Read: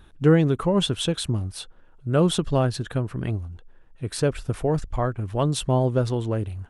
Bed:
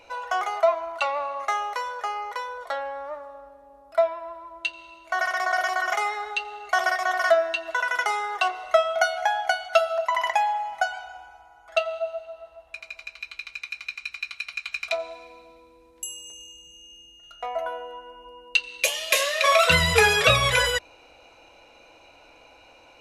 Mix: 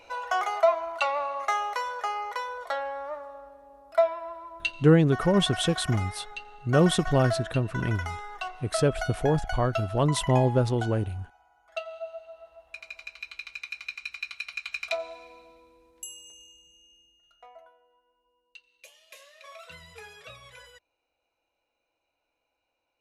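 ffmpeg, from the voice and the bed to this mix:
-filter_complex "[0:a]adelay=4600,volume=-1dB[a];[1:a]volume=7.5dB,afade=t=out:st=4.69:d=0.36:silence=0.298538,afade=t=in:st=11.77:d=1.13:silence=0.375837,afade=t=out:st=15.34:d=2.39:silence=0.0530884[b];[a][b]amix=inputs=2:normalize=0"

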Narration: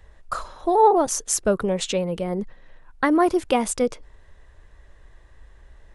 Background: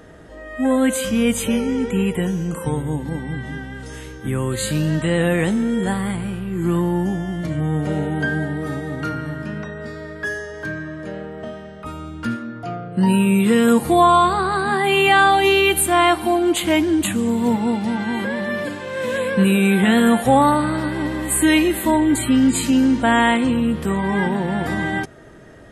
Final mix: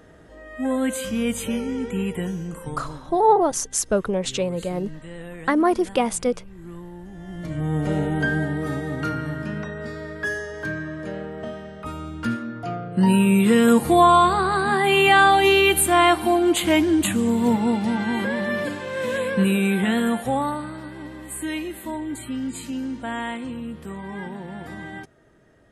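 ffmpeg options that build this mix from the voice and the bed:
-filter_complex "[0:a]adelay=2450,volume=-0.5dB[a];[1:a]volume=12.5dB,afade=t=out:st=2.31:d=0.79:silence=0.211349,afade=t=in:st=7.11:d=0.79:silence=0.11885,afade=t=out:st=18.7:d=2.05:silence=0.237137[b];[a][b]amix=inputs=2:normalize=0"

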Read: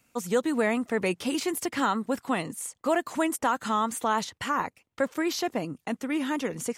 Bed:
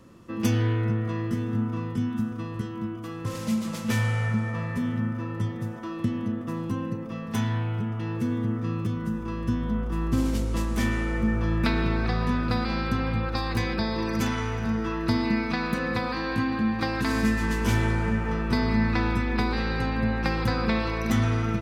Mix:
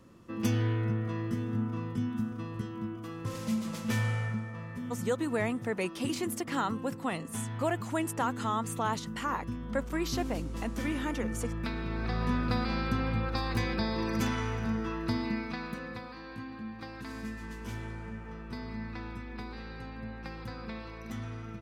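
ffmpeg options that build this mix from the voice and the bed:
-filter_complex "[0:a]adelay=4750,volume=-5.5dB[a];[1:a]volume=2dB,afade=t=out:st=4.11:d=0.37:silence=0.501187,afade=t=in:st=11.85:d=0.47:silence=0.446684,afade=t=out:st=14.51:d=1.59:silence=0.251189[b];[a][b]amix=inputs=2:normalize=0"

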